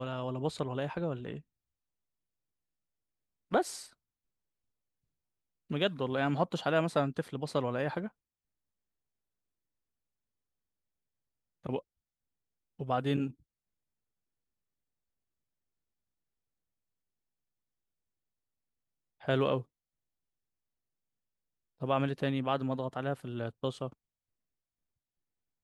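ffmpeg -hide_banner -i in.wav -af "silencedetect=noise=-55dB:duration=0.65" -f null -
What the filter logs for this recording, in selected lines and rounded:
silence_start: 1.41
silence_end: 3.51 | silence_duration: 2.10
silence_start: 3.93
silence_end: 5.70 | silence_duration: 1.77
silence_start: 8.10
silence_end: 11.64 | silence_duration: 3.53
silence_start: 11.81
silence_end: 12.79 | silence_duration: 0.98
silence_start: 13.34
silence_end: 19.20 | silence_duration: 5.87
silence_start: 19.63
silence_end: 21.80 | silence_duration: 2.17
silence_start: 23.93
silence_end: 25.63 | silence_duration: 1.70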